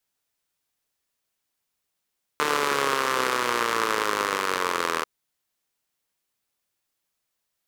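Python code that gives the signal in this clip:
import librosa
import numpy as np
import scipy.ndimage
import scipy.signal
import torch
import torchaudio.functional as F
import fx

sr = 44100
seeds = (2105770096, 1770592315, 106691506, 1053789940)

y = fx.engine_four_rev(sr, seeds[0], length_s=2.64, rpm=4500, resonances_hz=(460.0, 1100.0), end_rpm=2400)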